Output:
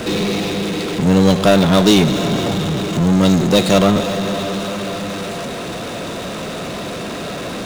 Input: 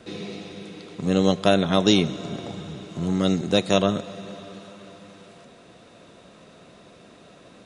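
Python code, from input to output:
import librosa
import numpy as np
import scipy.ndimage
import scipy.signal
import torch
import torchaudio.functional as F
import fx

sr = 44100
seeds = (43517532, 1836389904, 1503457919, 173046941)

y = fx.power_curve(x, sr, exponent=0.5)
y = y * librosa.db_to_amplitude(1.0)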